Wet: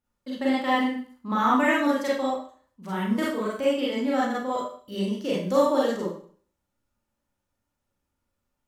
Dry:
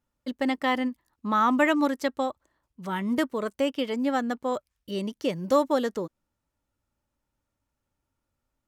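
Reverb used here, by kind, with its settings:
four-comb reverb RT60 0.47 s, combs from 31 ms, DRR −6.5 dB
level −5.5 dB

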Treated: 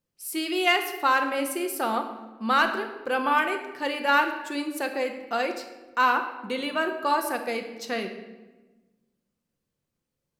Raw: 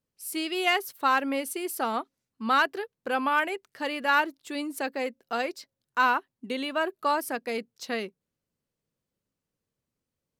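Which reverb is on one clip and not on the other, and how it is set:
rectangular room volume 760 cubic metres, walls mixed, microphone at 0.86 metres
level +1 dB

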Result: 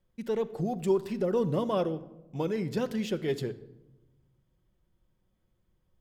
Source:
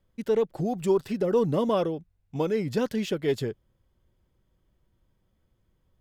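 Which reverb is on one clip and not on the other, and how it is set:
rectangular room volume 4,000 cubic metres, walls furnished, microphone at 0.92 metres
level −4 dB

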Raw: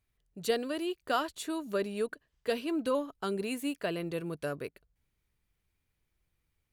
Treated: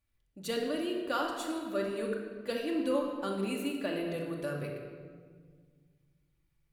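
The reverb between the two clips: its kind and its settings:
rectangular room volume 2,200 cubic metres, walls mixed, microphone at 2.4 metres
level −4.5 dB

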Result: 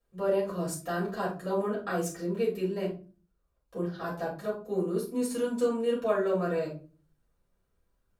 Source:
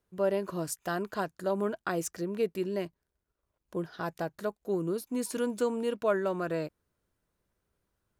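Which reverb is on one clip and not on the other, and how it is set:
rectangular room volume 190 cubic metres, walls furnished, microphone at 6 metres
level −10.5 dB

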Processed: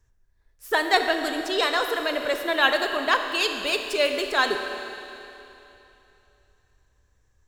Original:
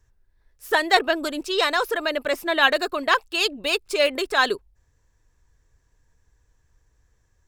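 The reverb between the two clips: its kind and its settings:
four-comb reverb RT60 3 s, combs from 26 ms, DRR 5.5 dB
level −2.5 dB

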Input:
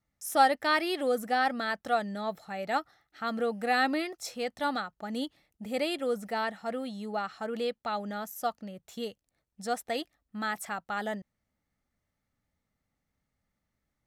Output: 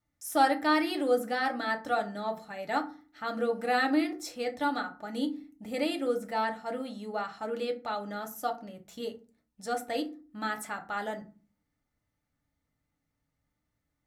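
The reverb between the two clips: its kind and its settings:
feedback delay network reverb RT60 0.36 s, low-frequency decay 1.6×, high-frequency decay 0.55×, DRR 3 dB
level −2.5 dB

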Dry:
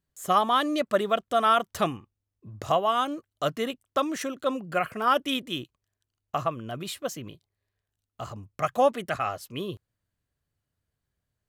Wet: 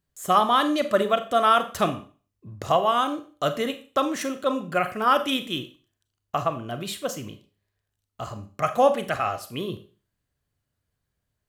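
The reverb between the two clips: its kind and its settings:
four-comb reverb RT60 0.38 s, combs from 30 ms, DRR 9 dB
level +2.5 dB

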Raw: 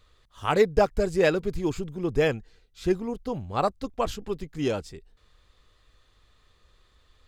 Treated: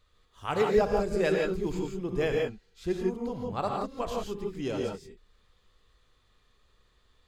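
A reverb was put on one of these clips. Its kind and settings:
reverb whose tail is shaped and stops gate 190 ms rising, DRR 0 dB
level −7 dB

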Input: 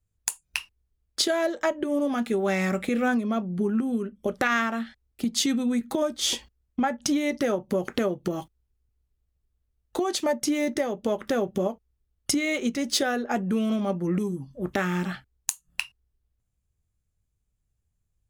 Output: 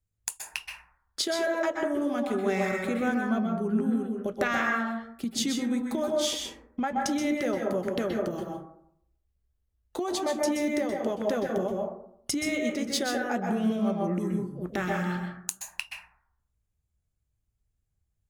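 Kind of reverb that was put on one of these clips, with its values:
dense smooth reverb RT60 0.7 s, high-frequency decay 0.3×, pre-delay 115 ms, DRR 0.5 dB
level −5 dB

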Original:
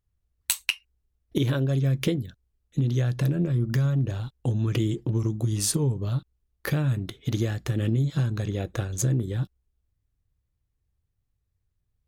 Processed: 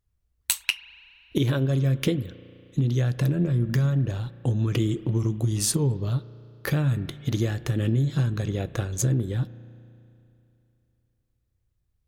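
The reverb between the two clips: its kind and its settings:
spring reverb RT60 2.9 s, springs 34 ms, chirp 75 ms, DRR 16 dB
level +1 dB

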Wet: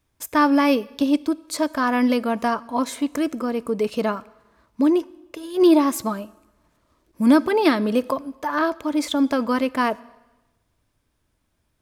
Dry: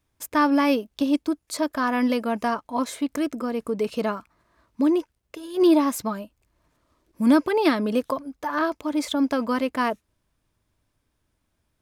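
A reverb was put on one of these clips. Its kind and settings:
dense smooth reverb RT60 1.1 s, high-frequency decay 0.95×, DRR 19.5 dB
level +2.5 dB

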